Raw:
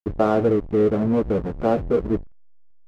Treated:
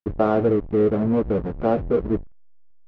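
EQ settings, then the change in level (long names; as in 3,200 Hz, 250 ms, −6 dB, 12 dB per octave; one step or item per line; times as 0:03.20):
high-frequency loss of the air 160 metres
0.0 dB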